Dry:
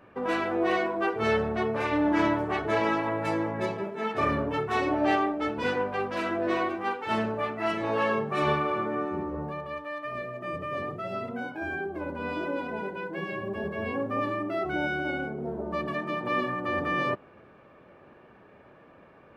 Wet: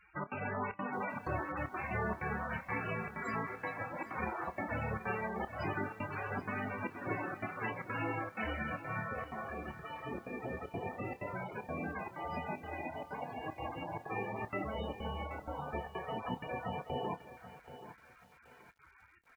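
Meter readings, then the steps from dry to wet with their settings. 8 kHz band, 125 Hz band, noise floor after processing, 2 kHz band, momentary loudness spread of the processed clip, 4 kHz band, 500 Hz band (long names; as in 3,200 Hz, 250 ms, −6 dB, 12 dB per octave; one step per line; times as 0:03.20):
can't be measured, −4.5 dB, −62 dBFS, −8.5 dB, 5 LU, −13.0 dB, −12.5 dB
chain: high-pass filter 56 Hz 12 dB per octave
parametric band 780 Hz +3 dB 0.83 octaves
gate on every frequency bin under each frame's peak −15 dB weak
parametric band 3,400 Hz −15 dB 0.54 octaves
single-tap delay 200 ms −22.5 dB
downward compressor 2.5 to 1, threshold −44 dBFS, peak gain reduction 9 dB
spectral peaks only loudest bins 32
gate pattern "xxx.xxxxx.xx" 190 BPM −24 dB
double-tracking delay 28 ms −13 dB
feedback echo at a low word length 779 ms, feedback 35%, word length 11 bits, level −13 dB
level +8.5 dB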